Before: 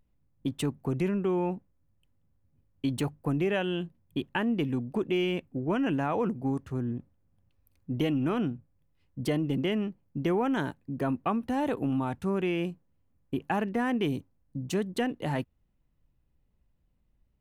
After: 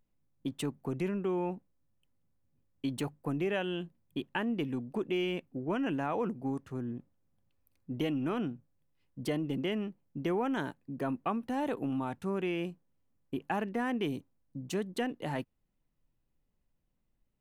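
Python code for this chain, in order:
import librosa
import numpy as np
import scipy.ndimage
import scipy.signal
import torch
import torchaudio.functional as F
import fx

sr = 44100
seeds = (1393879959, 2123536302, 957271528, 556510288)

y = fx.peak_eq(x, sr, hz=63.0, db=-10.5, octaves=1.7)
y = y * librosa.db_to_amplitude(-3.5)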